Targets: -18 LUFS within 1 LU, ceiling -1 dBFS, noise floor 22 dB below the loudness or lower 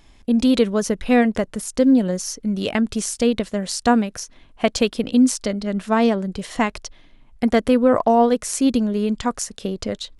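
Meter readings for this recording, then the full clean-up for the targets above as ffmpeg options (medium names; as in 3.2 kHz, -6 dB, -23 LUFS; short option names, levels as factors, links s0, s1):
loudness -20.0 LUFS; peak level -3.5 dBFS; loudness target -18.0 LUFS
-> -af "volume=1.26"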